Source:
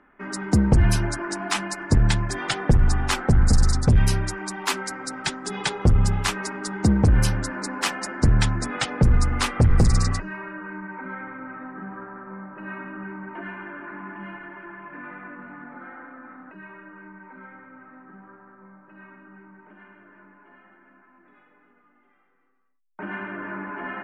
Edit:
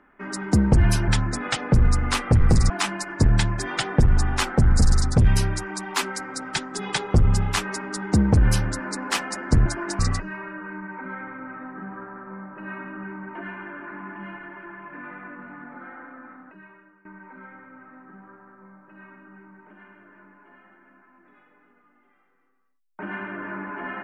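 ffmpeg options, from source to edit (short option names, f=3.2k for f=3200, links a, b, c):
-filter_complex "[0:a]asplit=6[a][b][c][d][e][f];[a]atrim=end=1.082[g];[b]atrim=start=8.368:end=9.992[h];[c]atrim=start=1.408:end=8.372[i];[d]atrim=start=1.078:end=1.412[j];[e]atrim=start=9.988:end=17.05,asetpts=PTS-STARTPTS,afade=t=out:st=6.222:d=0.84:silence=0.11885[k];[f]atrim=start=17.05,asetpts=PTS-STARTPTS,afade=t=in:d=0.004:c=hsin:silence=0.11885[l];[g][h]acrossfade=d=0.004:c1=hsin:c2=hsin[m];[m][i]acrossfade=d=0.004:c1=hsin:c2=hsin[n];[n][j]acrossfade=d=0.004:c1=hsin:c2=hsin[o];[k][l]concat=n=2:v=0:a=1[p];[o][p]acrossfade=d=0.004:c1=hsin:c2=hsin"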